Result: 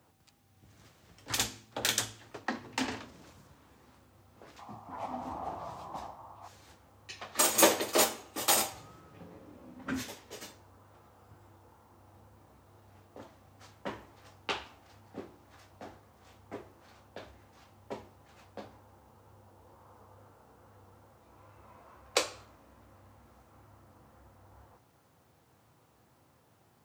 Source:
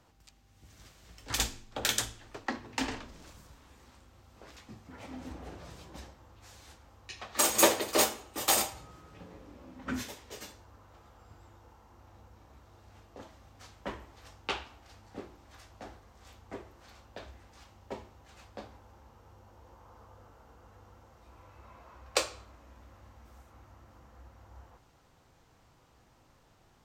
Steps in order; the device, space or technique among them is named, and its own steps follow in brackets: plain cassette with noise reduction switched in (mismatched tape noise reduction decoder only; wow and flutter; white noise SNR 36 dB); HPF 82 Hz 24 dB/oct; 4.59–6.48 band shelf 880 Hz +15 dB 1.1 oct

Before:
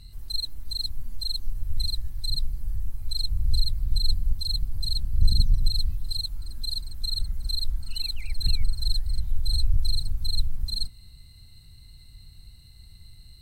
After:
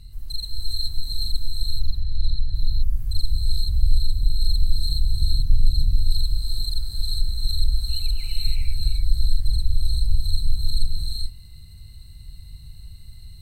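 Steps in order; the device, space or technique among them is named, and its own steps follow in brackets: 1.58–2.54 air absorption 180 m; ASMR close-microphone chain (low shelf 170 Hz +7.5 dB; compressor 4:1, threshold -14 dBFS, peak gain reduction 10.5 dB; high shelf 7900 Hz +4 dB); non-linear reverb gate 0.45 s rising, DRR -3 dB; gain -3 dB

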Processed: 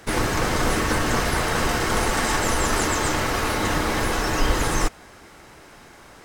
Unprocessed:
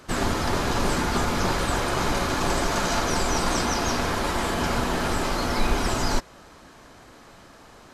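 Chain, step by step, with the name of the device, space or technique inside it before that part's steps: nightcore (varispeed +27%); gain +2 dB

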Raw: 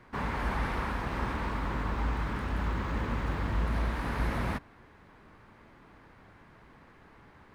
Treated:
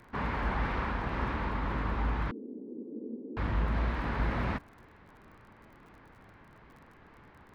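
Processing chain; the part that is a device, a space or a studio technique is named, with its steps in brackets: lo-fi chain (LPF 4000 Hz 12 dB/oct; wow and flutter; crackle 39/s -50 dBFS); 2.31–3.37 elliptic band-pass 230–460 Hz, stop band 70 dB

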